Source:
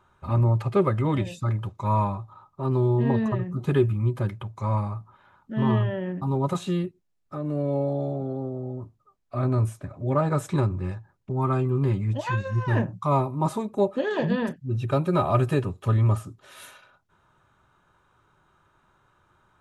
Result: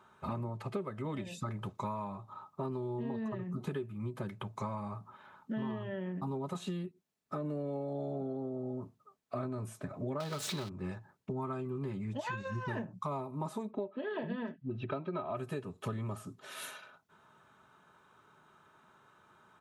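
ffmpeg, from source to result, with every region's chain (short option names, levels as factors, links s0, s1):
-filter_complex "[0:a]asettb=1/sr,asplit=3[s0][s1][s2];[s0]atrim=end=10.204[s3];[s1]atrim=start=10.2:end=10.69,asetpts=PTS-STARTPTS,afade=t=in:d=0.004:c=qsin,afade=t=out:st=0.486:d=0.004:c=qsin,aeval=exprs='val(0)+0.5*0.0422*sgn(val(0))':c=same,equalizer=f=4100:t=o:w=1.3:g=14[s4];[s2]atrim=start=10.686[s5];[s3][s4]acrossfade=d=0.004:c1=hsin:c2=qsin[s6];[s6][s5]acrossfade=d=0.004:c1=qsin:c2=hsin,asettb=1/sr,asplit=3[s7][s8][s9];[s7]atrim=end=13.714[s10];[s8]atrim=start=13.71:end=15.37,asetpts=PTS-STARTPTS,afade=t=in:d=0.004:c=qsin,afade=t=out:st=1.656:d=0.004:c=qsin,lowpass=f=3600:w=0.5412,lowpass=f=3600:w=1.3066,aecho=1:1:3.1:0.33,atrim=end_sample=73206[s11];[s9]atrim=start=15.366[s12];[s10][s11]acrossfade=d=0.004:c1=hsin:c2=qsin[s13];[s13][s12]acrossfade=d=0.004:c1=qsin:c2=hsin,highpass=140,aecho=1:1:4.6:0.31,acompressor=threshold=0.0178:ratio=16,volume=1.12"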